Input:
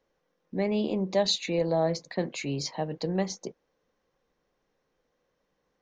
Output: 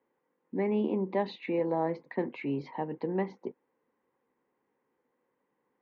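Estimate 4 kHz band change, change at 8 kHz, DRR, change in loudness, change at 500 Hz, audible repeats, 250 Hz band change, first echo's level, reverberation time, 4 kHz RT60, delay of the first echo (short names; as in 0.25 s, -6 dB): -19.0 dB, under -35 dB, none, -3.5 dB, -3.0 dB, none, -1.5 dB, none, none, none, none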